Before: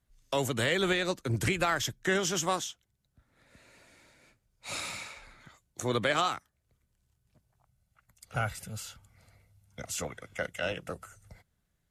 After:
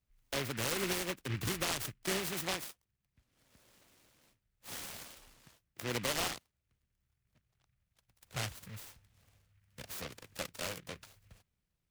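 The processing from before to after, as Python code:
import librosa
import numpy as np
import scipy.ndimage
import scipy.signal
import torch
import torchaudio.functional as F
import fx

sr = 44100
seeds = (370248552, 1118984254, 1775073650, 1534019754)

y = fx.noise_mod_delay(x, sr, seeds[0], noise_hz=1900.0, depth_ms=0.26)
y = y * 10.0 ** (-7.0 / 20.0)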